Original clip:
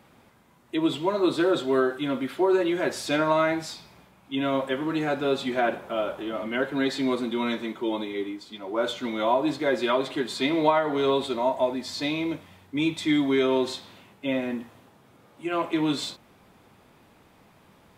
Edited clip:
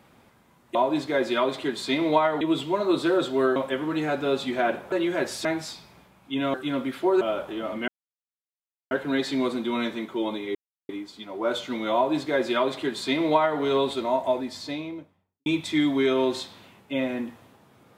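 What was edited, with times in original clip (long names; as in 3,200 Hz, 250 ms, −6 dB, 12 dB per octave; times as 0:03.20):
0:01.90–0:02.57: swap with 0:04.55–0:05.91
0:03.10–0:03.46: remove
0:06.58: splice in silence 1.03 s
0:08.22: splice in silence 0.34 s
0:09.27–0:10.93: duplicate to 0:00.75
0:11.61–0:12.79: fade out and dull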